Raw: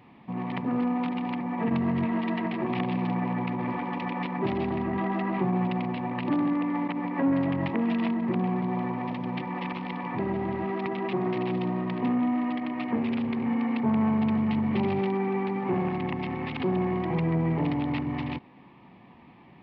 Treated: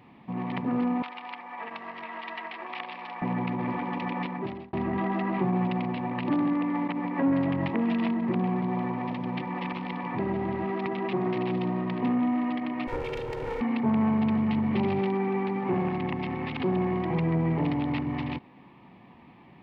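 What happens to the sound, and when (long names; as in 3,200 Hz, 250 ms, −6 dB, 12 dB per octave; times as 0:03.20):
0:01.02–0:03.22: high-pass filter 900 Hz
0:04.20–0:04.73: fade out
0:12.87–0:13.61: lower of the sound and its delayed copy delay 2.2 ms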